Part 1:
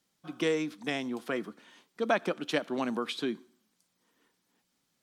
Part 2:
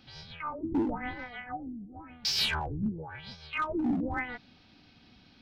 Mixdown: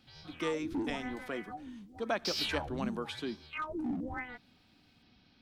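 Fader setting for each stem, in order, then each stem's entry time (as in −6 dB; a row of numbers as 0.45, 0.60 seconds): −6.0, −6.5 decibels; 0.00, 0.00 seconds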